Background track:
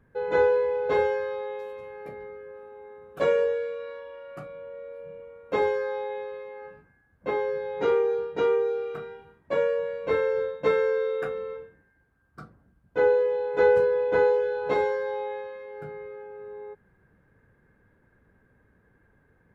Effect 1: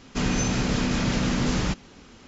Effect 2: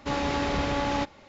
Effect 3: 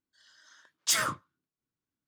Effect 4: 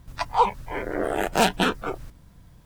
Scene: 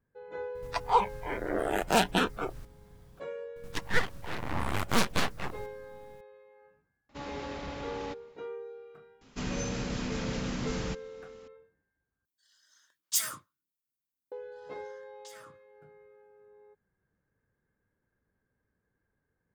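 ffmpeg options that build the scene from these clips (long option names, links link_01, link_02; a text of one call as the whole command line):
ffmpeg -i bed.wav -i cue0.wav -i cue1.wav -i cue2.wav -i cue3.wav -filter_complex "[4:a]asplit=2[link_01][link_02];[3:a]asplit=2[link_03][link_04];[0:a]volume=-17.5dB[link_05];[link_02]aeval=exprs='abs(val(0))':channel_layout=same[link_06];[link_03]aemphasis=mode=production:type=75fm[link_07];[link_04]acompressor=threshold=-41dB:ratio=6:attack=3.2:release=140:knee=1:detection=peak[link_08];[link_05]asplit=2[link_09][link_10];[link_09]atrim=end=12.254[link_11];[link_07]atrim=end=2.07,asetpts=PTS-STARTPTS,volume=-12.5dB[link_12];[link_10]atrim=start=14.316[link_13];[link_01]atrim=end=2.65,asetpts=PTS-STARTPTS,volume=-4.5dB,afade=type=in:duration=0.004:curve=hsin,afade=type=out:start_time=2.646:duration=0.004:curve=hsin,adelay=550[link_14];[link_06]atrim=end=2.65,asetpts=PTS-STARTPTS,volume=-4dB,afade=type=in:duration=0.004:curve=hsin,afade=type=out:start_time=2.646:duration=0.004:curve=hsin,adelay=3560[link_15];[2:a]atrim=end=1.28,asetpts=PTS-STARTPTS,volume=-12.5dB,afade=type=in:duration=0.004:curve=hsin,afade=type=out:start_time=1.276:duration=0.004:curve=hsin,adelay=7090[link_16];[1:a]atrim=end=2.27,asetpts=PTS-STARTPTS,volume=-10dB,afade=type=in:duration=0.004:curve=hsin,afade=type=out:start_time=2.266:duration=0.004:curve=hsin,adelay=9210[link_17];[link_08]atrim=end=2.07,asetpts=PTS-STARTPTS,volume=-9dB,afade=type=in:duration=0.004:curve=hsin,afade=type=out:start_time=2.066:duration=0.004:curve=hsin,adelay=14380[link_18];[link_11][link_12]acrossfade=duration=0.004:curve1=hsin:curve2=hsin[link_19];[link_19][link_13]acrossfade=duration=0.004:curve1=hsin:curve2=hsin[link_20];[link_20][link_14][link_15][link_16][link_17][link_18]amix=inputs=6:normalize=0" out.wav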